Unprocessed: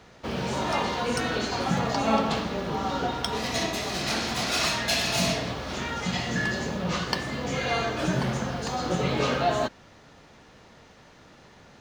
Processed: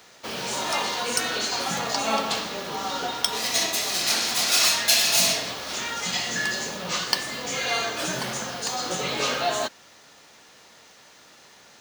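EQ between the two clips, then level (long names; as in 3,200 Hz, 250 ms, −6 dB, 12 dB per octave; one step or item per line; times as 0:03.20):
RIAA equalisation recording
0.0 dB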